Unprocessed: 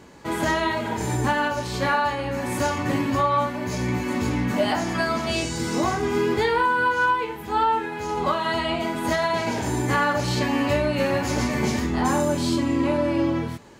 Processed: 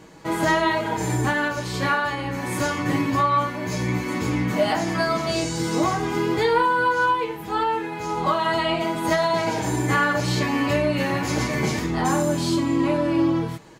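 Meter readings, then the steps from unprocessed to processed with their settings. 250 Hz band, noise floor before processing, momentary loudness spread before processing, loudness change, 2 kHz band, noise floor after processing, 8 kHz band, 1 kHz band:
+1.0 dB, -32 dBFS, 5 LU, +1.0 dB, +1.0 dB, -32 dBFS, +1.0 dB, +0.5 dB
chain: comb 6.3 ms, depth 52%

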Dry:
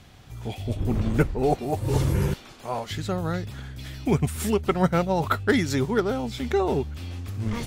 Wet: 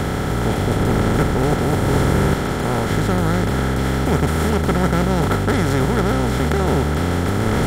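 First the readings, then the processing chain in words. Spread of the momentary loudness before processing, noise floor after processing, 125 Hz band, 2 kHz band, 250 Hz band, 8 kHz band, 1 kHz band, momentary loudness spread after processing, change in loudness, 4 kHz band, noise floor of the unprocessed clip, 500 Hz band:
12 LU, -21 dBFS, +8.5 dB, +8.5 dB, +7.5 dB, +8.0 dB, +7.5 dB, 2 LU, +7.0 dB, +8.0 dB, -48 dBFS, +5.5 dB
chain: per-bin compression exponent 0.2; bell 73 Hz +6 dB 2.3 oct; gain -5 dB

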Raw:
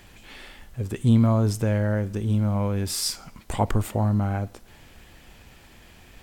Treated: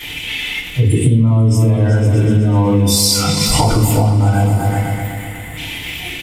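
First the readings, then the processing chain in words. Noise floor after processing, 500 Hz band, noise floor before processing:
-28 dBFS, +9.0 dB, -51 dBFS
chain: zero-crossing step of -26 dBFS; spectral gain 4.47–5.57, 2200–6800 Hz -15 dB; high shelf 4800 Hz +5.5 dB; spectral noise reduction 20 dB; band shelf 2700 Hz +16 dB 1.1 oct; notch 970 Hz, Q 27; repeats that get brighter 0.124 s, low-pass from 400 Hz, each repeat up 2 oct, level -6 dB; limiter -14 dBFS, peak gain reduction 8.5 dB; downsampling 32000 Hz; FDN reverb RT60 0.39 s, low-frequency decay 1.6×, high-frequency decay 0.85×, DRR -10 dB; compressor, threshold -15 dBFS, peak gain reduction 12.5 dB; gain +5.5 dB

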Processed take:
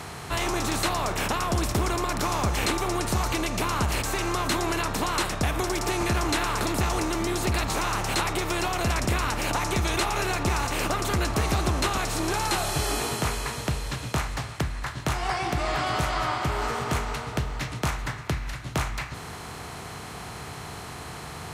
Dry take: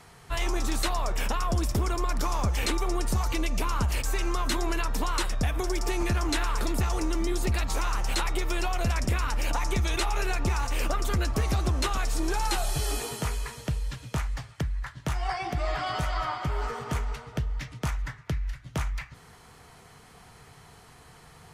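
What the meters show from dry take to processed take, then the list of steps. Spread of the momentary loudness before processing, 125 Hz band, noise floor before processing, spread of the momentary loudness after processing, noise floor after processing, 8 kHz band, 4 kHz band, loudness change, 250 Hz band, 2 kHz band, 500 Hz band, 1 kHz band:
6 LU, +1.0 dB, -53 dBFS, 10 LU, -39 dBFS, +4.5 dB, +4.5 dB, +3.0 dB, +3.5 dB, +5.0 dB, +4.5 dB, +5.0 dB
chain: per-bin compression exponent 0.6; HPF 60 Hz 12 dB/oct

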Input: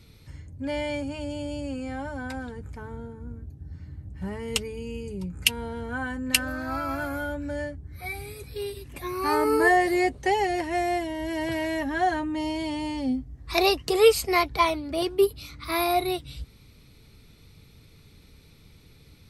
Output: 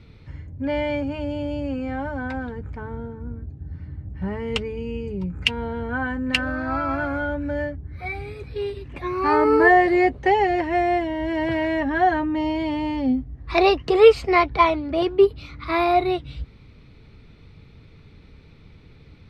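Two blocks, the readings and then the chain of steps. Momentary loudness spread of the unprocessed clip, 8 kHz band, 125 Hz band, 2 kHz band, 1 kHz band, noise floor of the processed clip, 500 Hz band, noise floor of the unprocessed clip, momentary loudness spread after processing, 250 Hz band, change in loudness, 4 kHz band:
18 LU, under -10 dB, +5.5 dB, +4.0 dB, +5.5 dB, -49 dBFS, +5.5 dB, -54 dBFS, 18 LU, +5.5 dB, +5.0 dB, -0.5 dB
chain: LPF 2600 Hz 12 dB/oct; gain +5.5 dB

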